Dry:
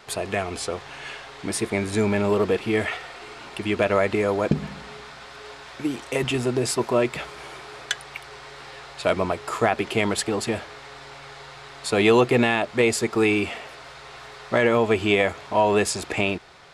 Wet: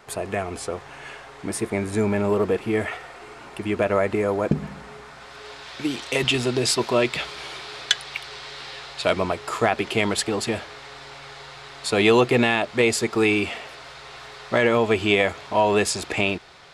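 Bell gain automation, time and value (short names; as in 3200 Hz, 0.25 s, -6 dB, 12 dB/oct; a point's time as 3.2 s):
bell 3900 Hz 1.5 oct
5.05 s -7 dB
5.37 s +0.5 dB
5.91 s +9.5 dB
8.63 s +9.5 dB
9.37 s +3 dB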